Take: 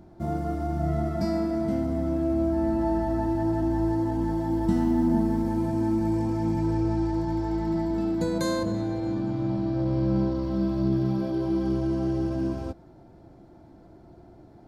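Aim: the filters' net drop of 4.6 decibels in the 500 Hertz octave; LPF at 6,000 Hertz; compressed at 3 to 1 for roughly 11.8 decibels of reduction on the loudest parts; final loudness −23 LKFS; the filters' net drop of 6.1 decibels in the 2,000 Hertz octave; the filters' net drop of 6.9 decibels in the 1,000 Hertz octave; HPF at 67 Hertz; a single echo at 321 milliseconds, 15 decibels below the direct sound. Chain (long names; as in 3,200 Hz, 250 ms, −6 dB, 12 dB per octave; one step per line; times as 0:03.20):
high-pass filter 67 Hz
low-pass filter 6,000 Hz
parametric band 500 Hz −7 dB
parametric band 1,000 Hz −5 dB
parametric band 2,000 Hz −5.5 dB
downward compressor 3 to 1, threshold −37 dBFS
single-tap delay 321 ms −15 dB
level +14.5 dB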